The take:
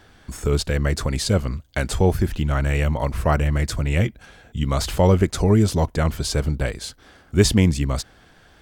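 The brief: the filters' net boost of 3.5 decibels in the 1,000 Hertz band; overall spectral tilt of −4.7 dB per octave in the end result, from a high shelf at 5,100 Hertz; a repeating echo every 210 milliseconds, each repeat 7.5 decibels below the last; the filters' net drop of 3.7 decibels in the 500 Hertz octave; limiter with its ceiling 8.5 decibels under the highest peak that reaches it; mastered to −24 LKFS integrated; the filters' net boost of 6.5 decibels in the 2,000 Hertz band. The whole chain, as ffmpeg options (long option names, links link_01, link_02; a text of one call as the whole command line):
ffmpeg -i in.wav -af "equalizer=frequency=500:width_type=o:gain=-6,equalizer=frequency=1000:width_type=o:gain=4.5,equalizer=frequency=2000:width_type=o:gain=6.5,highshelf=frequency=5100:gain=3.5,alimiter=limit=-10.5dB:level=0:latency=1,aecho=1:1:210|420|630|840|1050:0.422|0.177|0.0744|0.0312|0.0131,volume=-2dB" out.wav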